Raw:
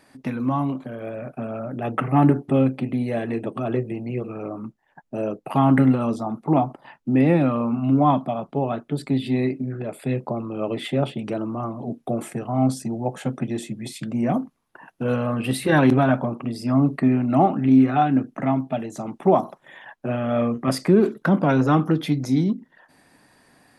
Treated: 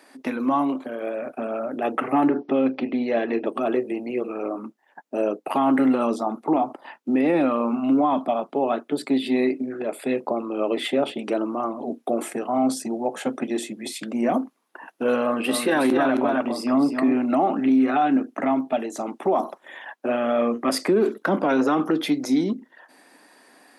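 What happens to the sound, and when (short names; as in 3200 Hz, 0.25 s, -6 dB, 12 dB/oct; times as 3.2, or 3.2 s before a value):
2.28–3.46 brick-wall FIR low-pass 6000 Hz
15.22–17.17 echo 0.266 s -6.5 dB
whole clip: HPF 260 Hz 24 dB/oct; limiter -16 dBFS; gain +4 dB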